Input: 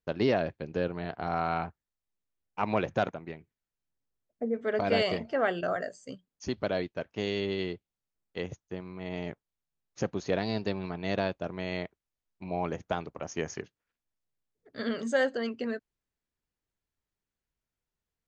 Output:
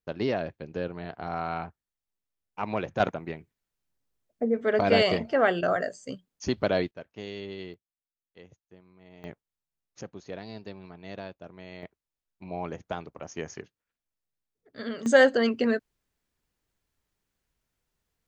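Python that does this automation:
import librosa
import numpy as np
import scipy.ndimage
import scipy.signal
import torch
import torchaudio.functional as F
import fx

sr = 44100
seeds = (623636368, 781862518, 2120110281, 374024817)

y = fx.gain(x, sr, db=fx.steps((0.0, -2.0), (3.0, 5.0), (6.91, -7.0), (7.74, -15.5), (9.24, -3.0), (10.01, -10.0), (11.83, -2.5), (15.06, 8.5)))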